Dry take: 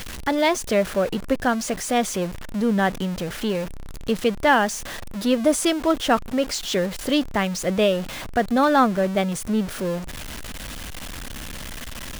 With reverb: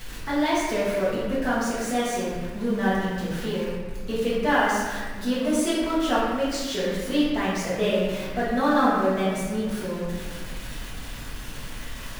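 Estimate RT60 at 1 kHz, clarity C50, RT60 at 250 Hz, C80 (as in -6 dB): 1.3 s, -1.5 dB, 1.9 s, 1.0 dB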